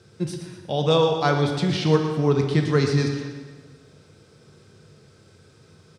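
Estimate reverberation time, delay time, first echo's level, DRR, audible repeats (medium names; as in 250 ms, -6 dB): 1.5 s, 119 ms, -10.5 dB, 2.5 dB, 2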